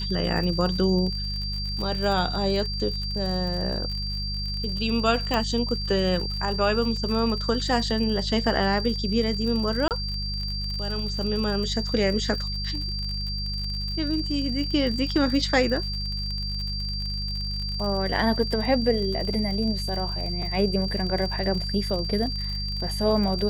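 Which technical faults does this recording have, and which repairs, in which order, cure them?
surface crackle 55 per second −31 dBFS
mains hum 50 Hz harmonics 4 −31 dBFS
whistle 4,700 Hz −31 dBFS
0:05.34: click −12 dBFS
0:09.88–0:09.91: drop-out 28 ms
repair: click removal
notch filter 4,700 Hz, Q 30
hum removal 50 Hz, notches 4
repair the gap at 0:09.88, 28 ms

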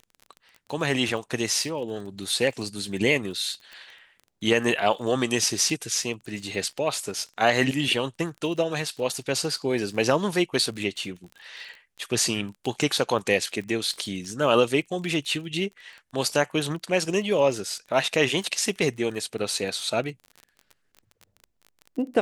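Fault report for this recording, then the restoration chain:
surface crackle 25 per second −34 dBFS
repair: click removal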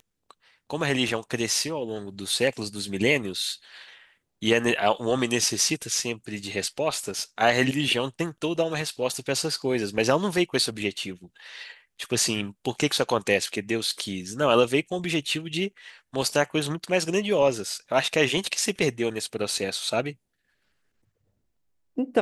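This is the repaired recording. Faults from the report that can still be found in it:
none of them is left

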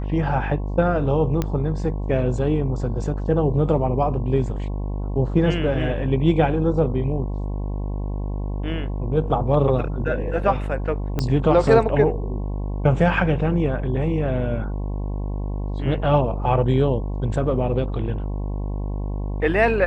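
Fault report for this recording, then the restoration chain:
mains buzz 50 Hz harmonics 22 −26 dBFS
0:01.42: click −10 dBFS
0:11.19: click −10 dBFS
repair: click removal
hum removal 50 Hz, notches 22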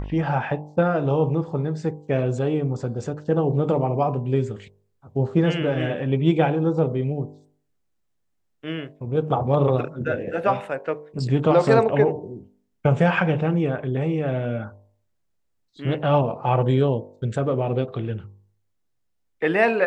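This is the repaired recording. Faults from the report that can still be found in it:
0:11.19: click

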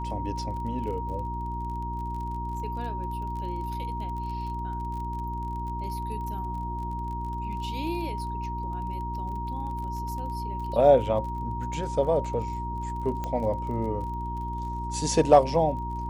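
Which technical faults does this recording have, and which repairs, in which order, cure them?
surface crackle 29 per second −37 dBFS
mains hum 60 Hz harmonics 6 −34 dBFS
whistle 940 Hz −33 dBFS
0:13.24: click −19 dBFS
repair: click removal
hum removal 60 Hz, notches 6
notch filter 940 Hz, Q 30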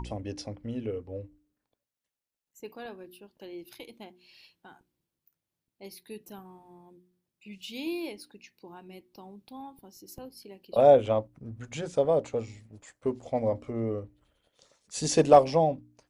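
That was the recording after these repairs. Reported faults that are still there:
none of them is left

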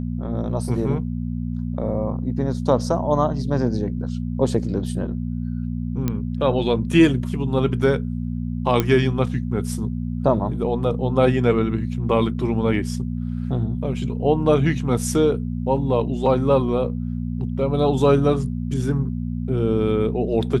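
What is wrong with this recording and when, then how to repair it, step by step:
mains hum 60 Hz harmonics 4 −26 dBFS
0:06.08: click −10 dBFS
0:08.80: click −6 dBFS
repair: click removal
hum removal 60 Hz, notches 4

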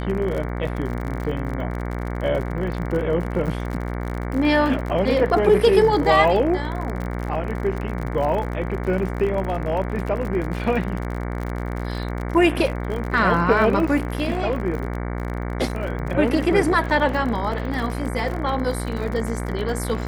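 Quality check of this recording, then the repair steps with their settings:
mains buzz 60 Hz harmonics 38 −27 dBFS
surface crackle 49 per second −28 dBFS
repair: click removal
hum removal 60 Hz, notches 38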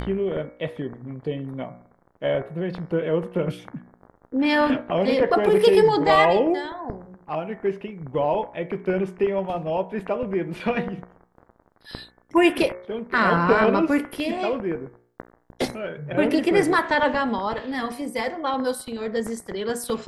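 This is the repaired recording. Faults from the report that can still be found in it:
none of them is left

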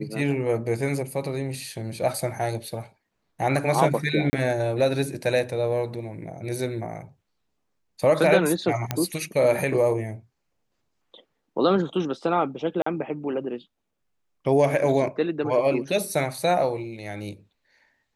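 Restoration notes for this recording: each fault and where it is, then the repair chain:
0:04.30–0:04.33: drop-out 30 ms
0:08.91: click −9 dBFS
0:12.82–0:12.86: drop-out 44 ms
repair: click removal
repair the gap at 0:04.30, 30 ms
repair the gap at 0:12.82, 44 ms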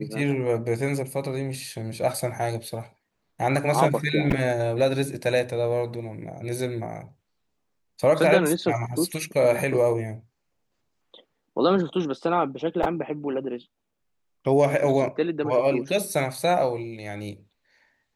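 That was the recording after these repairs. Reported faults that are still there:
none of them is left

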